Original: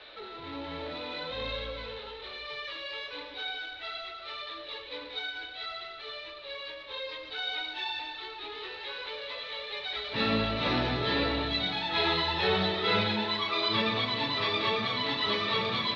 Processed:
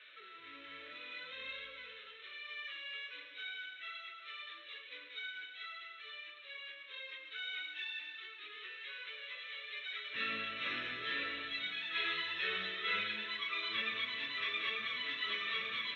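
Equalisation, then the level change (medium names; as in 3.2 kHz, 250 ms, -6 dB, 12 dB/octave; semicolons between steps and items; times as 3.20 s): band-pass filter 3.4 kHz, Q 0.56; static phaser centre 2 kHz, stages 4; -2.0 dB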